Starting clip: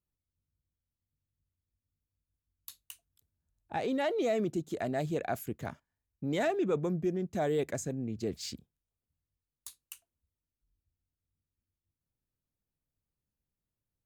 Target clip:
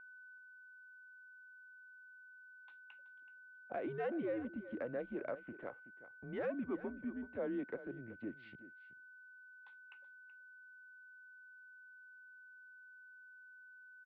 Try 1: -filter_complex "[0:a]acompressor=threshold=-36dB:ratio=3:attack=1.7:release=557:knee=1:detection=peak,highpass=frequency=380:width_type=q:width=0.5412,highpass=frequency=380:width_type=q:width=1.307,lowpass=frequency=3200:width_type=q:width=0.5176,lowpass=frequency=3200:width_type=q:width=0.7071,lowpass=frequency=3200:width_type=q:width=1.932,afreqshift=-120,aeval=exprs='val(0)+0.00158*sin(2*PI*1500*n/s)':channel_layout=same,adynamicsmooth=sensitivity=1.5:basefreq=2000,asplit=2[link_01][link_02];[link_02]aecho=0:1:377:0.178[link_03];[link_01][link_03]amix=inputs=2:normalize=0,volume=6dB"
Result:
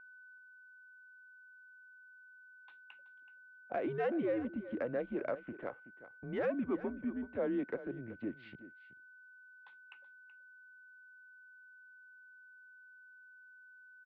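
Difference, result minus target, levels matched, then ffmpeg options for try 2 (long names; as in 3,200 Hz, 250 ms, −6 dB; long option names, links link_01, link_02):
downward compressor: peak gain reduction −4.5 dB
-filter_complex "[0:a]acompressor=threshold=-43dB:ratio=3:attack=1.7:release=557:knee=1:detection=peak,highpass=frequency=380:width_type=q:width=0.5412,highpass=frequency=380:width_type=q:width=1.307,lowpass=frequency=3200:width_type=q:width=0.5176,lowpass=frequency=3200:width_type=q:width=0.7071,lowpass=frequency=3200:width_type=q:width=1.932,afreqshift=-120,aeval=exprs='val(0)+0.00158*sin(2*PI*1500*n/s)':channel_layout=same,adynamicsmooth=sensitivity=1.5:basefreq=2000,asplit=2[link_01][link_02];[link_02]aecho=0:1:377:0.178[link_03];[link_01][link_03]amix=inputs=2:normalize=0,volume=6dB"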